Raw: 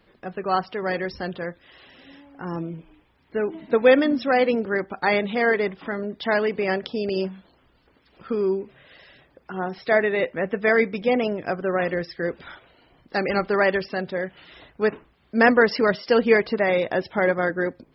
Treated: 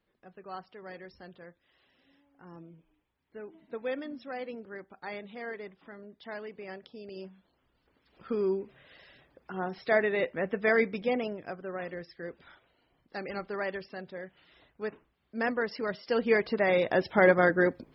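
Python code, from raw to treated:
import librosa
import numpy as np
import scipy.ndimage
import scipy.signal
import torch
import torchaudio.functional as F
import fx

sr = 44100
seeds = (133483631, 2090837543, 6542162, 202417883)

y = fx.gain(x, sr, db=fx.line((7.06, -19.0), (8.33, -6.0), (10.93, -6.0), (11.59, -14.0), (15.78, -14.0), (16.38, -7.0), (17.25, 0.0)))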